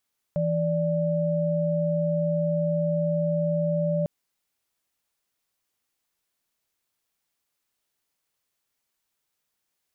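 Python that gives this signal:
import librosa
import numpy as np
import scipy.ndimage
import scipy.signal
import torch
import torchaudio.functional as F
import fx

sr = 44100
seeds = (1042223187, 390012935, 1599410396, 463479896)

y = fx.chord(sr, length_s=3.7, notes=(52, 74), wave='sine', level_db=-24.5)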